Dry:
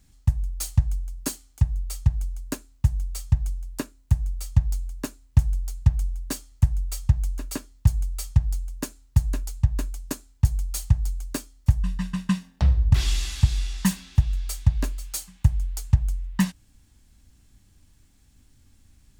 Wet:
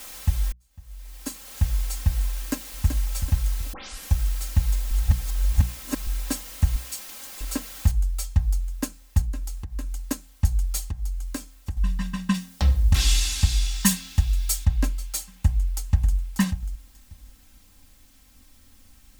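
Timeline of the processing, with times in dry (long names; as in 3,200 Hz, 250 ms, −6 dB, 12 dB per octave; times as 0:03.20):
0:00.52–0:01.62: fade in quadratic
0:02.35–0:02.87: delay throw 380 ms, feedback 35%, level −8 dB
0:03.73: tape start 0.42 s
0:04.91–0:06.07: reverse
0:06.76–0:07.41: Butterworth high-pass 2,300 Hz
0:07.91: noise floor change −42 dB −61 dB
0:09.21–0:09.92: downward compressor 4 to 1, threshold −30 dBFS
0:10.79–0:11.77: downward compressor 2 to 1, threshold −31 dBFS
0:12.34–0:14.65: high-shelf EQ 3,100 Hz +8.5 dB
0:15.32–0:16.16: delay throw 590 ms, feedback 15%, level −9 dB
whole clip: mains-hum notches 60/120/180 Hz; comb filter 3.8 ms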